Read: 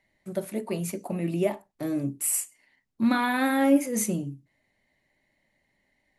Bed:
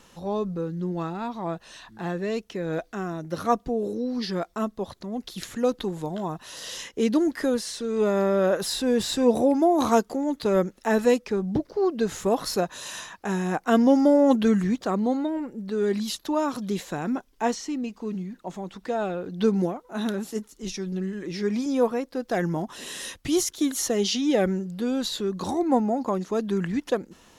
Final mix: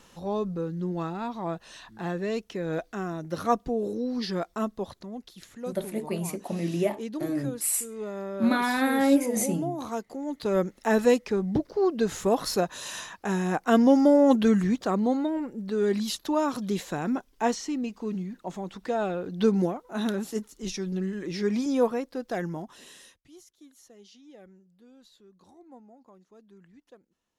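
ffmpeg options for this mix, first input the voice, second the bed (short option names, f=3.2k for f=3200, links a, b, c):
-filter_complex "[0:a]adelay=5400,volume=-0.5dB[a];[1:a]volume=10.5dB,afade=t=out:st=4.78:d=0.57:silence=0.281838,afade=t=in:st=9.99:d=0.85:silence=0.251189,afade=t=out:st=21.69:d=1.54:silence=0.0398107[b];[a][b]amix=inputs=2:normalize=0"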